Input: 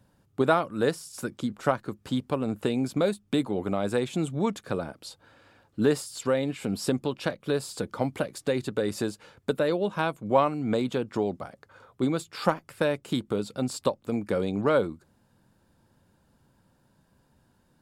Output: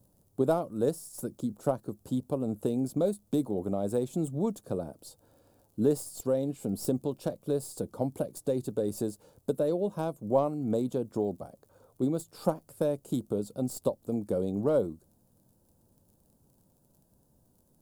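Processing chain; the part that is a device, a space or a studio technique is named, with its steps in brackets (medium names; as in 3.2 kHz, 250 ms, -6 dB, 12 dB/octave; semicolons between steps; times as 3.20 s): record under a worn stylus (tracing distortion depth 0.036 ms; crackle 39 per s -47 dBFS; pink noise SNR 42 dB); FFT filter 640 Hz 0 dB, 2 kHz -21 dB, 11 kHz +5 dB; trim -2.5 dB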